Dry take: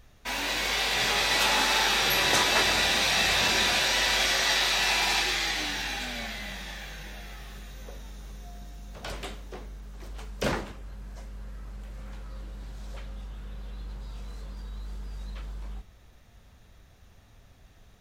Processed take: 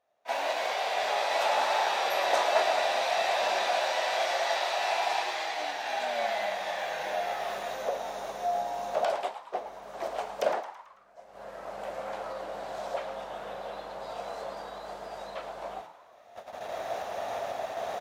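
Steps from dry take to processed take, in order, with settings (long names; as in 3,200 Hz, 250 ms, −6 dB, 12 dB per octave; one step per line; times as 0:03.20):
camcorder AGC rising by 13 dB per second
noise gate −29 dBFS, range −13 dB
high-pass with resonance 650 Hz, resonance Q 4.9
spectral tilt −2.5 dB per octave
echo with shifted repeats 110 ms, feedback 47%, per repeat +120 Hz, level −12 dB
level −6 dB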